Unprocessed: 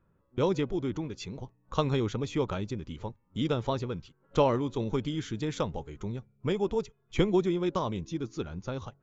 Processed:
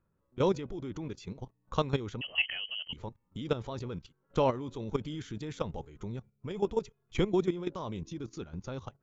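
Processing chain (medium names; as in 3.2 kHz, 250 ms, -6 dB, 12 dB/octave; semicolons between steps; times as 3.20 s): 2.21–2.93 s: frequency inversion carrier 3.1 kHz; level held to a coarse grid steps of 13 dB; trim +1.5 dB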